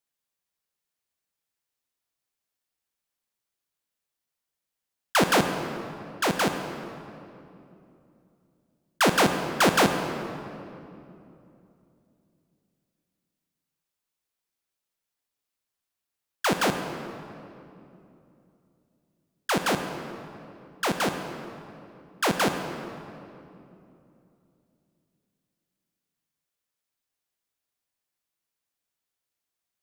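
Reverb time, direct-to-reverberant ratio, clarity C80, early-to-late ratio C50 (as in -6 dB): 2.8 s, 6.5 dB, 8.0 dB, 7.0 dB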